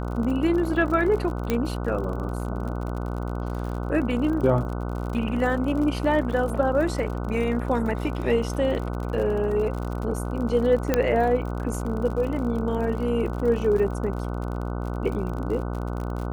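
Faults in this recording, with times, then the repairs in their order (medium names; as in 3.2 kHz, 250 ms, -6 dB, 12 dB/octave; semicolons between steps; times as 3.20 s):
buzz 60 Hz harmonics 25 -29 dBFS
crackle 56 per s -32 dBFS
1.50 s: pop -10 dBFS
10.94 s: pop -7 dBFS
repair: de-click; de-hum 60 Hz, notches 25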